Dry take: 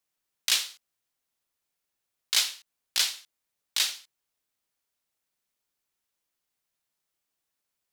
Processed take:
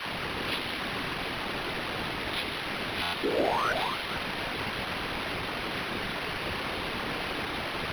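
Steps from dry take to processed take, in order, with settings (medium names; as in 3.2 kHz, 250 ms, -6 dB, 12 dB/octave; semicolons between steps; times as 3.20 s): one-bit delta coder 32 kbps, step -19.5 dBFS; high-pass 41 Hz; bass shelf 380 Hz +6 dB; phase dispersion lows, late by 60 ms, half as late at 770 Hz; painted sound rise, 3.23–3.73 s, 320–1600 Hz -22 dBFS; on a send: repeats whose band climbs or falls 148 ms, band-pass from 310 Hz, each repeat 1.4 oct, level -1 dB; on the sum: whisper effect; buffer glitch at 3.02 s, samples 512, times 9; decimation joined by straight lines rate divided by 6×; trim -6 dB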